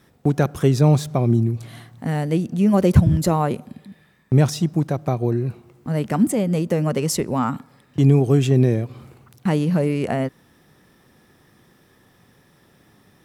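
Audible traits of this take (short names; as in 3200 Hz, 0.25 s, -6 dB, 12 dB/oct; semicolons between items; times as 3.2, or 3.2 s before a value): noise floor -57 dBFS; spectral tilt -8.0 dB/oct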